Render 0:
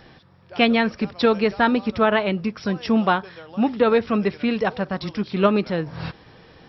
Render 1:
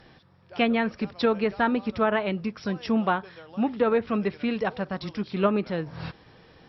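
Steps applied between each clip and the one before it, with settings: low-pass that closes with the level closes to 2.4 kHz, closed at -13.5 dBFS; trim -5 dB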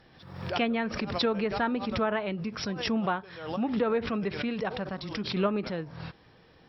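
swell ahead of each attack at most 66 dB/s; trim -5 dB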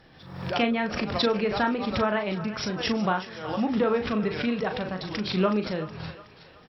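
doubling 38 ms -7 dB; thinning echo 370 ms, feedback 52%, high-pass 640 Hz, level -13 dB; trim +2.5 dB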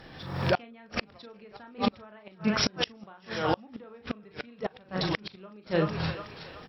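hum notches 60/120/180 Hz; inverted gate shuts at -19 dBFS, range -31 dB; trim +6.5 dB

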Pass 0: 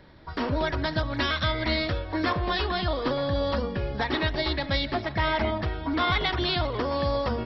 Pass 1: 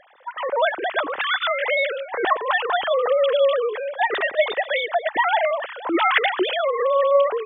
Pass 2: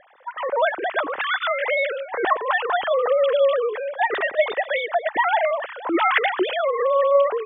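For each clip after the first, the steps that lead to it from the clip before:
formants replaced by sine waves; trim +5.5 dB
low-pass 2.9 kHz 12 dB/octave

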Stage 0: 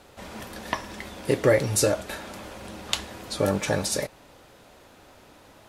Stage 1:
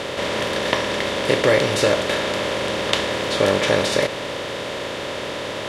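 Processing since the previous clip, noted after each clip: spectral levelling over time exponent 0.4; FFT filter 110 Hz 0 dB, 3.3 kHz +8 dB, 10 kHz -9 dB; trim -3.5 dB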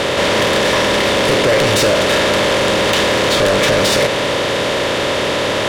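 in parallel at +2.5 dB: peak limiter -9.5 dBFS, peak gain reduction 7.5 dB; on the sum: saturation -15.5 dBFS, distortion -8 dB; trim +5.5 dB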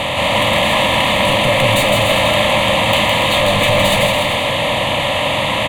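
static phaser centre 1.5 kHz, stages 6; on a send: bouncing-ball echo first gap 160 ms, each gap 0.8×, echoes 5; on the sum: trim +2 dB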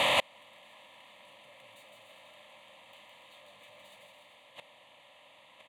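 inverted gate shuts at -8 dBFS, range -35 dB; high-pass 580 Hz 6 dB/octave; trim -5 dB

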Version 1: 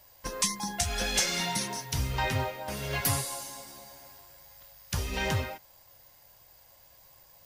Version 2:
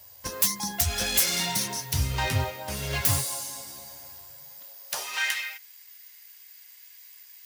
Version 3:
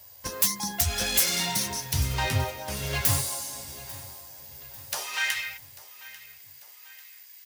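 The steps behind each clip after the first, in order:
self-modulated delay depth 0.079 ms; treble shelf 3.6 kHz +9 dB; high-pass sweep 77 Hz -> 2 kHz, 4.27–5.33 s
feedback delay 843 ms, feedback 50%, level -19 dB

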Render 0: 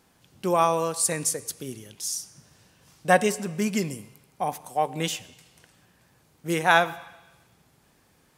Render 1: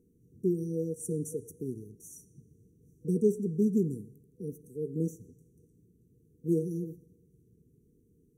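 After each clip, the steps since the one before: FFT band-reject 490–5700 Hz; resonant high shelf 4.6 kHz -13.5 dB, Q 3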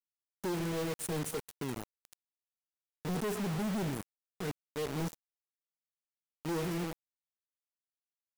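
companded quantiser 2-bit; trim -7.5 dB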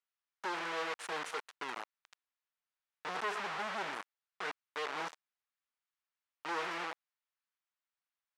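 Chebyshev high-pass 1.2 kHz, order 2; tape spacing loss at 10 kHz 25 dB; trim +11.5 dB

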